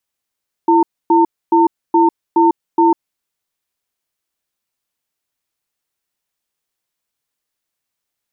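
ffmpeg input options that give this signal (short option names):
-f lavfi -i "aevalsrc='0.299*(sin(2*PI*335*t)+sin(2*PI*907*t))*clip(min(mod(t,0.42),0.15-mod(t,0.42))/0.005,0,1)':d=2.4:s=44100"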